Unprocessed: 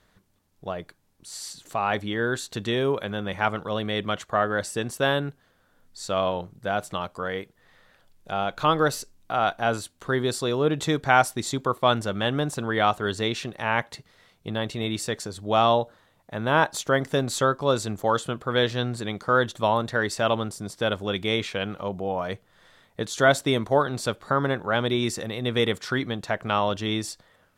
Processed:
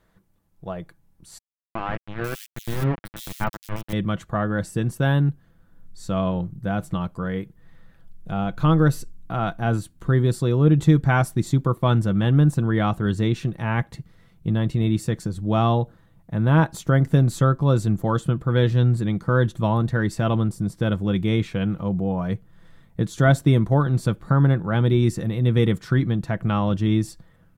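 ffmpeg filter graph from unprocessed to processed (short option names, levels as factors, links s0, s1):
-filter_complex "[0:a]asettb=1/sr,asplit=3[s0][s1][s2];[s0]atrim=end=1.384[s3];[s1]atrim=start=1.38:end=3.93,asetpts=PTS-STARTPTS,afade=t=in:d=0.004:c=qsin,afade=t=out:st=2.546:d=0.004:c=qsin,aeval=exprs='val(0)*gte(abs(val(0)),0.0891)':c=same,acrossover=split=3100[s4][s5];[s5]adelay=490[s6];[s4][s6]amix=inputs=2:normalize=0,atrim=end_sample=112455[s7];[s2]atrim=start=3.926[s8];[s3][s7]acrossfade=d=0.004:c1=hsin:c2=qsin[s9];[s9][s8]acrossfade=d=0.004:c1=qsin:c2=hsin,equalizer=f=4600:t=o:w=2.4:g=-8.5,aecho=1:1:6:0.37,asubboost=boost=5.5:cutoff=230"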